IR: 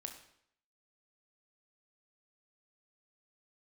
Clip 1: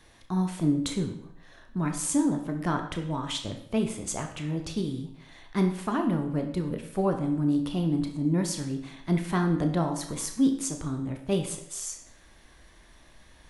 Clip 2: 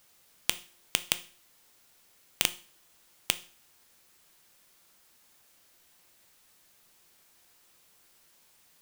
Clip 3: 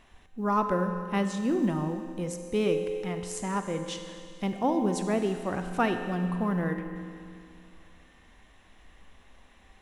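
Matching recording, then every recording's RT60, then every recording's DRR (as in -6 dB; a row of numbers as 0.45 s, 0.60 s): 1; 0.65 s, 0.40 s, 2.4 s; 4.5 dB, 11.0 dB, 6.0 dB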